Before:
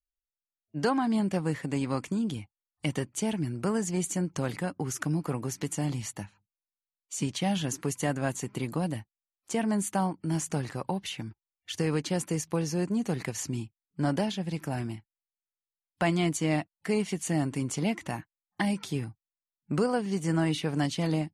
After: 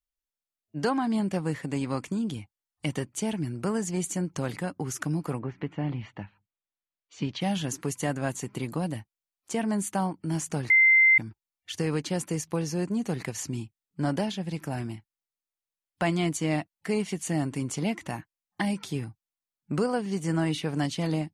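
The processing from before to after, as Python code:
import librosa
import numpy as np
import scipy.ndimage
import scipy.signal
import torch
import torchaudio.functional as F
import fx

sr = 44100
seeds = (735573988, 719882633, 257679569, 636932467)

y = fx.lowpass(x, sr, hz=fx.line((5.38, 2400.0), (7.4, 4700.0)), slope=24, at=(5.38, 7.4), fade=0.02)
y = fx.edit(y, sr, fx.bleep(start_s=10.7, length_s=0.48, hz=2080.0, db=-15.0), tone=tone)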